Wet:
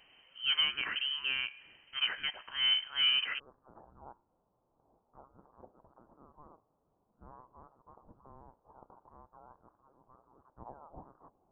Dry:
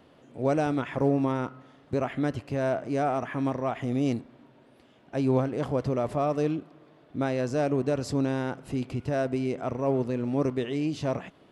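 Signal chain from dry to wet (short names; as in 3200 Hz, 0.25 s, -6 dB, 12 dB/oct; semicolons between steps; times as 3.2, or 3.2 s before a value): steep high-pass 590 Hz 72 dB/oct, from 3.38 s 2800 Hz; dynamic EQ 2100 Hz, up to +6 dB, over -60 dBFS, Q 4.9; inverted band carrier 3700 Hz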